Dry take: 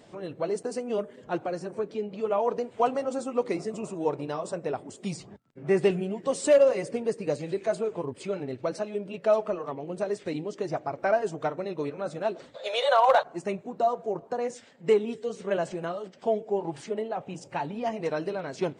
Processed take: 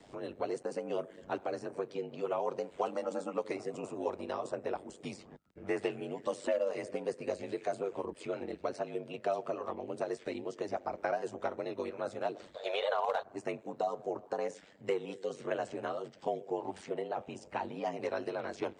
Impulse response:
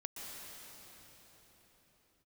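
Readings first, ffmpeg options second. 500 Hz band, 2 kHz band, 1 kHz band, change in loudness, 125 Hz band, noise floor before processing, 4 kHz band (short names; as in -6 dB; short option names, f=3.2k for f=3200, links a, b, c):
-8.5 dB, -7.0 dB, -8.5 dB, -8.5 dB, -11.5 dB, -53 dBFS, -8.5 dB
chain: -filter_complex "[0:a]aeval=exprs='val(0)*sin(2*PI*48*n/s)':c=same,acrossover=split=240|480|3200[a][b][c][d];[a]acompressor=threshold=-55dB:ratio=4[e];[b]acompressor=threshold=-40dB:ratio=4[f];[c]acompressor=threshold=-33dB:ratio=4[g];[d]acompressor=threshold=-56dB:ratio=4[h];[e][f][g][h]amix=inputs=4:normalize=0"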